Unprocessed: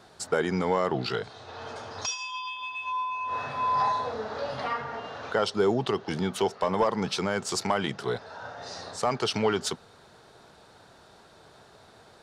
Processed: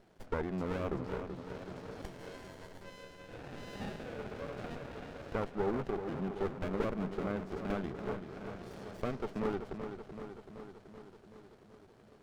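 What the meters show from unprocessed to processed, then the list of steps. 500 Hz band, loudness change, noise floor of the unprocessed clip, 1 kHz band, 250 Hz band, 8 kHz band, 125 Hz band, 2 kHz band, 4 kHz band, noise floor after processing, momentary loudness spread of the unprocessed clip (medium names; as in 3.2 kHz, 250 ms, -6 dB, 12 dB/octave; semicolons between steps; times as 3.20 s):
-9.5 dB, -10.5 dB, -55 dBFS, -15.5 dB, -6.0 dB, under -20 dB, -5.5 dB, -12.5 dB, -20.5 dB, -60 dBFS, 13 LU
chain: low-pass that closes with the level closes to 1.5 kHz, closed at -26.5 dBFS; filtered feedback delay 381 ms, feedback 68%, low-pass 3.7 kHz, level -8 dB; sliding maximum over 33 samples; trim -8 dB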